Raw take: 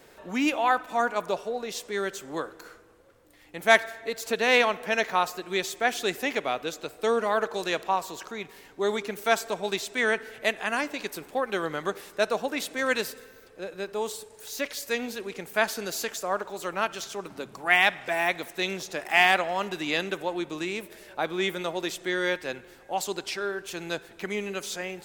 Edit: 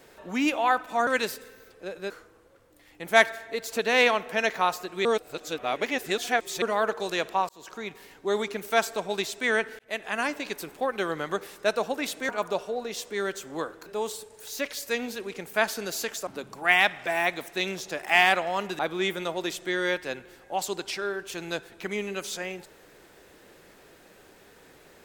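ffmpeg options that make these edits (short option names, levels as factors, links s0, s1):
-filter_complex "[0:a]asplit=11[s0][s1][s2][s3][s4][s5][s6][s7][s8][s9][s10];[s0]atrim=end=1.072[s11];[s1]atrim=start=12.828:end=13.862[s12];[s2]atrim=start=2.638:end=5.592[s13];[s3]atrim=start=5.588:end=7.162,asetpts=PTS-STARTPTS,areverse[s14];[s4]atrim=start=7.158:end=8.03,asetpts=PTS-STARTPTS,afade=t=out:st=0.868:d=0.004:c=hsin[s15];[s5]atrim=start=8.03:end=10.33,asetpts=PTS-STARTPTS,afade=t=in:d=0.3,afade=t=out:st=2.296:d=0.004:c=hsin[s16];[s6]atrim=start=10.33:end=12.832,asetpts=PTS-STARTPTS,afade=t=in:d=0.49:c=qsin[s17];[s7]atrim=start=1.068:end=2.642[s18];[s8]atrim=start=13.858:end=16.272[s19];[s9]atrim=start=17.288:end=19.812[s20];[s10]atrim=start=21.178[s21];[s11][s12]acrossfade=d=0.004:c1=hsin:c2=hsin[s22];[s22][s13]acrossfade=d=0.004:c1=hsin:c2=hsin[s23];[s23][s14]acrossfade=d=0.004:c1=hsin:c2=hsin[s24];[s15][s16][s17]concat=n=3:v=0:a=1[s25];[s24][s25]acrossfade=d=0.004:c1=hsin:c2=hsin[s26];[s26][s18]acrossfade=d=0.004:c1=hsin:c2=hsin[s27];[s27][s19]acrossfade=d=0.004:c1=hsin:c2=hsin[s28];[s28][s20]acrossfade=d=0.004:c1=hsin:c2=hsin[s29];[s29][s21]acrossfade=d=0.004:c1=hsin:c2=hsin"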